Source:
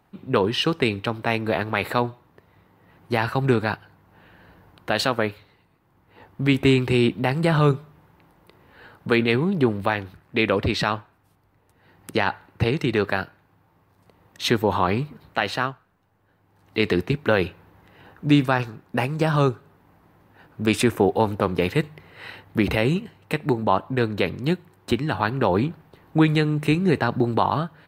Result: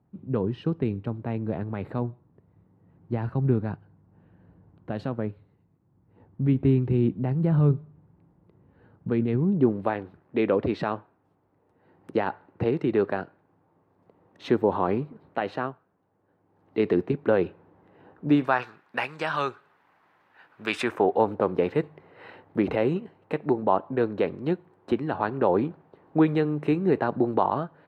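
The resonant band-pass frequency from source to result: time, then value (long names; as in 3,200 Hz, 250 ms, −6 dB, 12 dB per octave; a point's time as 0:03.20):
resonant band-pass, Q 0.75
0:09.37 140 Hz
0:09.84 390 Hz
0:18.25 390 Hz
0:18.71 1,800 Hz
0:20.63 1,800 Hz
0:21.27 490 Hz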